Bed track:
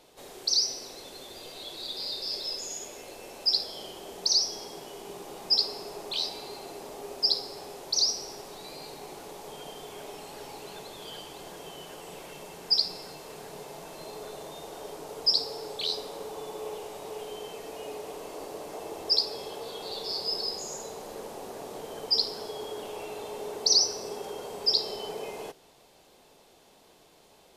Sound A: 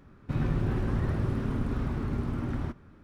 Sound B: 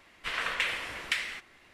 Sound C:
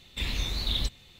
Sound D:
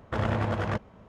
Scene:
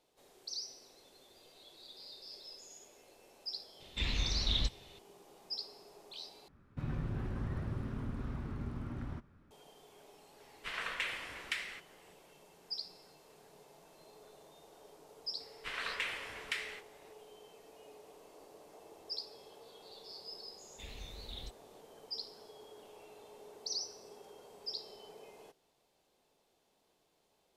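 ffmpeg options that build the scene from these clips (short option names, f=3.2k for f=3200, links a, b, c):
-filter_complex "[3:a]asplit=2[a][b];[2:a]asplit=2[c][d];[0:a]volume=-17dB[e];[a]lowpass=f=6.8k:w=0.5412,lowpass=f=6.8k:w=1.3066[f];[1:a]equalizer=f=360:w=1.5:g=-2.5[g];[d]asplit=2[h][i];[i]adelay=24,volume=-11.5dB[j];[h][j]amix=inputs=2:normalize=0[k];[e]asplit=2[l][m];[l]atrim=end=6.484[n];[g]atrim=end=3.03,asetpts=PTS-STARTPTS,volume=-9.5dB[o];[m]atrim=start=9.506[p];[f]atrim=end=1.19,asetpts=PTS-STARTPTS,volume=-3.5dB,afade=t=in:d=0.004:c=hsin,afade=t=out:st=1.186:d=0.004:c=hsin,adelay=3800[q];[c]atrim=end=1.73,asetpts=PTS-STARTPTS,volume=-7.5dB,afade=t=in:d=0.004:c=hsin,afade=t=out:st=1.726:d=0.004:c=hsin,adelay=10400[r];[k]atrim=end=1.73,asetpts=PTS-STARTPTS,volume=-8dB,afade=t=in:d=0.004:c=hsin,afade=t=out:st=1.726:d=0.004:c=hsin,adelay=679140S[s];[b]atrim=end=1.19,asetpts=PTS-STARTPTS,volume=-18dB,afade=t=in:d=0.004:c=hsin,afade=t=out:st=1.186:d=0.004:c=hsin,adelay=20620[t];[n][o]acrossfade=d=0.004:c1=hsin:c2=hsin[u];[u][p]acrossfade=d=0.004:c1=hsin:c2=hsin[v];[v][q][r][s][t]amix=inputs=5:normalize=0"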